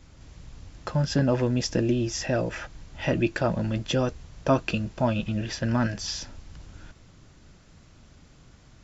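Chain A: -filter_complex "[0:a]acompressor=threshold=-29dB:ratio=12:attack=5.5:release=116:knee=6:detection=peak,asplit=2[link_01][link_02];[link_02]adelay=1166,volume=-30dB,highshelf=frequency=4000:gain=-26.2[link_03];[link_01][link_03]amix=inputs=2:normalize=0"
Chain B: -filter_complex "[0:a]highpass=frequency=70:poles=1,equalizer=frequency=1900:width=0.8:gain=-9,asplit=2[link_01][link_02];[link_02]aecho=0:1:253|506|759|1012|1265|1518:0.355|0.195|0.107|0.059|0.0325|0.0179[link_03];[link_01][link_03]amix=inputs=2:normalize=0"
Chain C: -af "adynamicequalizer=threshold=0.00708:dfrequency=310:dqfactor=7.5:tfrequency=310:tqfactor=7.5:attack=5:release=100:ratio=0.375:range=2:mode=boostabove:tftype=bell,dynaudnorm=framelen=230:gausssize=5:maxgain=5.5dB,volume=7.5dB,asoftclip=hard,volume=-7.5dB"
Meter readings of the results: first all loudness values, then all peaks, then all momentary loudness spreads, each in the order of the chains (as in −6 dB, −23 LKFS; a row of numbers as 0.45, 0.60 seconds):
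−34.5, −28.0, −22.0 LKFS; −13.0, −9.5, −7.5 dBFS; 21, 13, 11 LU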